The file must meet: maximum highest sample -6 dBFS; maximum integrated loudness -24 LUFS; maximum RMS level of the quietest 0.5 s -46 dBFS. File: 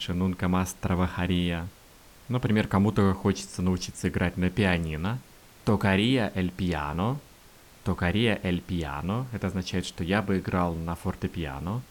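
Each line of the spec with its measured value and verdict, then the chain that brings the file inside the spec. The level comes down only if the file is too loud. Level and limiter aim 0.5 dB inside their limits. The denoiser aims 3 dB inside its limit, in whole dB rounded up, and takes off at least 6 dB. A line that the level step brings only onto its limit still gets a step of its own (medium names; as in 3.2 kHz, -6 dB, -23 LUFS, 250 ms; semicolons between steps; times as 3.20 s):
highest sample -11.5 dBFS: pass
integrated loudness -28.0 LUFS: pass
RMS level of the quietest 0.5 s -53 dBFS: pass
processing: none needed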